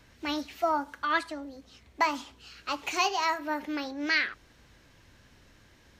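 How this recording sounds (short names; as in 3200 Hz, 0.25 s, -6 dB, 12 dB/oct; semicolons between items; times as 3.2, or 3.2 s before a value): noise floor -60 dBFS; spectral tilt -2.0 dB/oct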